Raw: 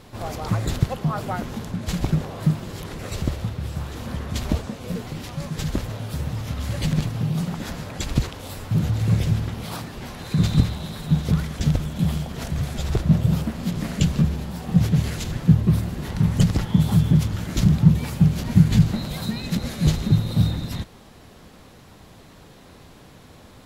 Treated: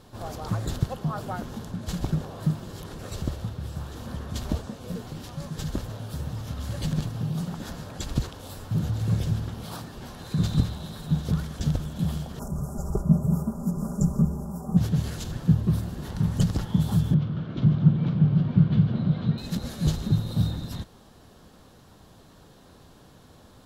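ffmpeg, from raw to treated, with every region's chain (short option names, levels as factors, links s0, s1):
-filter_complex "[0:a]asettb=1/sr,asplit=3[s0][s1][s2];[s0]atrim=end=12.394[s3];[s1]atrim=start=12.39:end=14.77,asetpts=PTS-STARTPTS,afade=t=in:d=0.004:c=qsin,afade=t=out:st=2.376:d=0.004:c=qsin,asuperstop=centerf=2800:order=12:qfactor=0.64,equalizer=f=6100:t=o:w=0.23:g=-6.5,aecho=1:1:5:0.72,atrim=end_sample=104958[s4];[s2]atrim=start=14.766[s5];[s3][s4]acrossfade=d=0.004:c1=hsin:c2=qsin[s6];[s6][s5]acrossfade=d=0.004:c1=qsin:c2=hsin,asettb=1/sr,asplit=3[s7][s8][s9];[s7]atrim=end=17.144[s10];[s8]atrim=start=17.14:end=19.38,asetpts=PTS-STARTPTS,afade=t=in:d=0.004:c=qsin,afade=t=out:st=2.236:d=0.004:c=qsin,highpass=130,equalizer=f=130:t=q:w=4:g=7,equalizer=f=860:t=q:w=4:g=-6,equalizer=f=1800:t=q:w=4:g=-7,equalizer=f=2600:t=q:w=4:g=-4,lowpass=f=3000:w=0.5412,lowpass=f=3000:w=1.3066,aecho=1:1:48|153|228|495:0.335|0.299|0.251|0.596,atrim=end_sample=98784[s11];[s9]atrim=start=19.376[s12];[s10][s11]acrossfade=d=0.004:c1=hsin:c2=qsin[s13];[s13][s12]acrossfade=d=0.004:c1=qsin:c2=hsin,equalizer=f=2400:w=3.9:g=-7,bandreject=f=2000:w=11,volume=0.562"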